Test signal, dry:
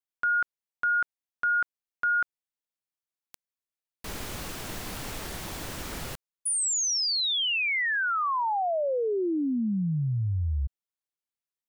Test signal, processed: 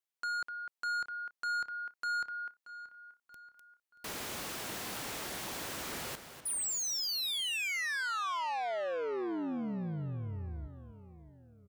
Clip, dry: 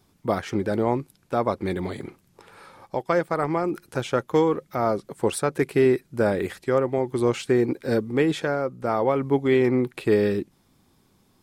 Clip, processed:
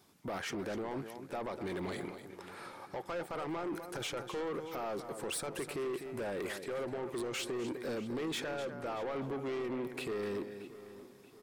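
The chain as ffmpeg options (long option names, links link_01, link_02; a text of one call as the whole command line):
ffmpeg -i in.wav -filter_complex "[0:a]acompressor=threshold=-25dB:ratio=6:attack=0.38:release=71:knee=1:detection=peak,highpass=frequency=300:poles=1,asplit=2[link_01][link_02];[link_02]aecho=0:1:251:0.224[link_03];[link_01][link_03]amix=inputs=2:normalize=0,asoftclip=type=tanh:threshold=-33.5dB,asplit=2[link_04][link_05];[link_05]adelay=630,lowpass=frequency=4000:poles=1,volume=-15dB,asplit=2[link_06][link_07];[link_07]adelay=630,lowpass=frequency=4000:poles=1,volume=0.47,asplit=2[link_08][link_09];[link_09]adelay=630,lowpass=frequency=4000:poles=1,volume=0.47,asplit=2[link_10][link_11];[link_11]adelay=630,lowpass=frequency=4000:poles=1,volume=0.47[link_12];[link_06][link_08][link_10][link_12]amix=inputs=4:normalize=0[link_13];[link_04][link_13]amix=inputs=2:normalize=0" out.wav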